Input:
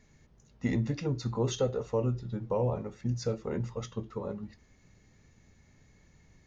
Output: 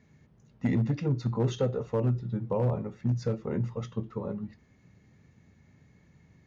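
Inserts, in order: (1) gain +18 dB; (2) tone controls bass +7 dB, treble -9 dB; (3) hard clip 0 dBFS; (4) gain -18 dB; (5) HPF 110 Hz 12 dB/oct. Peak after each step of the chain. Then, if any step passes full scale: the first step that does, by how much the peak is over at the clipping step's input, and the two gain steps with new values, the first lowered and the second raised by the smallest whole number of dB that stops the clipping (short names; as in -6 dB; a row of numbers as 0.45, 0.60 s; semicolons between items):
+0.5, +4.5, 0.0, -18.0, -15.0 dBFS; step 1, 4.5 dB; step 1 +13 dB, step 4 -13 dB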